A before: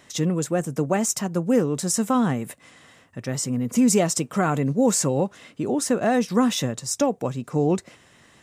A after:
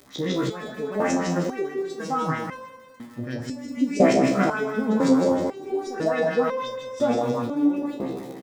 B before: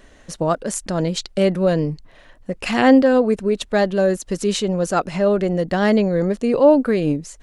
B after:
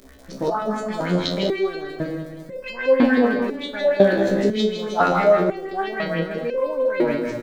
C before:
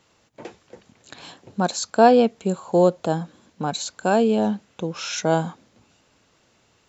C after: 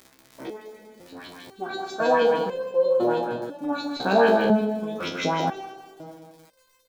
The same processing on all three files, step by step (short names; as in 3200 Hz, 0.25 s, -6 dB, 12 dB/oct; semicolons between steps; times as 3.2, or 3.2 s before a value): spectral trails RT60 1.45 s; LFO low-pass saw up 6.3 Hz 350–4600 Hz; crackle 73/s -27 dBFS; bell 270 Hz +8.5 dB 0.33 oct; notch 2800 Hz, Q 9.2; on a send: feedback echo 0.197 s, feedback 48%, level -10.5 dB; on the sum: dynamic EQ 2300 Hz, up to +4 dB, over -32 dBFS, Q 0.8; stepped resonator 2 Hz 66–520 Hz; gain +3 dB